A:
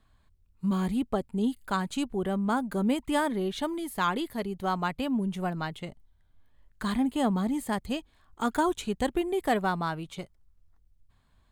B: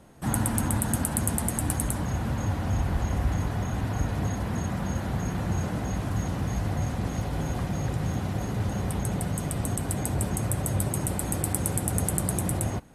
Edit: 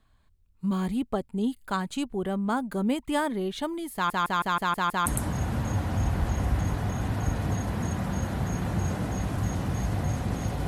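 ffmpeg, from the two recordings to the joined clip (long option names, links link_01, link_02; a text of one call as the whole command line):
ffmpeg -i cue0.wav -i cue1.wav -filter_complex "[0:a]apad=whole_dur=10.67,atrim=end=10.67,asplit=7[link_01][link_02][link_03][link_04][link_05][link_06][link_07];[link_01]atrim=end=4.102[link_08];[link_02]atrim=start=3.938:end=4.102[link_09];[link_03]atrim=start=3.938:end=4.102[link_10];[link_04]atrim=start=3.938:end=4.102[link_11];[link_05]atrim=start=3.938:end=4.102[link_12];[link_06]atrim=start=3.938:end=4.102[link_13];[link_07]atrim=start=3.938:end=4.102[link_14];[1:a]atrim=start=1.788:end=7.4[link_15];[link_08][link_09]acrossfade=duration=0.004:curve1=hsin:curve2=hsin[link_16];[link_16][link_10]acrossfade=duration=0.004:curve1=hsin:curve2=hsin[link_17];[link_17][link_11]acrossfade=duration=0.004:curve1=hsin:curve2=hsin[link_18];[link_18][link_12]acrossfade=duration=0.004:curve1=hsin:curve2=hsin[link_19];[link_19][link_13]acrossfade=duration=0.004:curve1=hsin:curve2=hsin[link_20];[link_20][link_14]acrossfade=duration=0.004:curve1=hsin:curve2=hsin[link_21];[link_21][link_15]acrossfade=duration=0.004:curve1=hsin:curve2=hsin" out.wav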